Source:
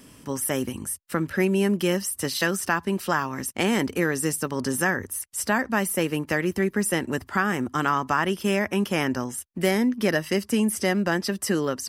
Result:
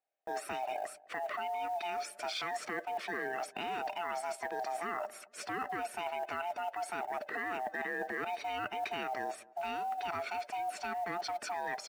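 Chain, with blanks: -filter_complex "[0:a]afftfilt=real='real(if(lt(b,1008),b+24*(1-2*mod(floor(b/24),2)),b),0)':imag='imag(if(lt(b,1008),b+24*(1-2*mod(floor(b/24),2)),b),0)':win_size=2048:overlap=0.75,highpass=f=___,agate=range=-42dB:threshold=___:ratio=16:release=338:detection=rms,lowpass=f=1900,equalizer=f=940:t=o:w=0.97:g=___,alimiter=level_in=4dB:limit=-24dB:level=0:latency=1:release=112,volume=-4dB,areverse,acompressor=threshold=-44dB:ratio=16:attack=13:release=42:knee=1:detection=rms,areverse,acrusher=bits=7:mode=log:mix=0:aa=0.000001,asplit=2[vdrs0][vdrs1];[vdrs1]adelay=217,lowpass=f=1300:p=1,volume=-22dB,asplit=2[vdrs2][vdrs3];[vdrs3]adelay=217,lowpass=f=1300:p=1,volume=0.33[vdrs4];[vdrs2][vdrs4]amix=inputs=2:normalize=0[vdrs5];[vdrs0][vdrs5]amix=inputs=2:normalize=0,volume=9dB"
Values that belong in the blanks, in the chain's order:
380, -40dB, -13.5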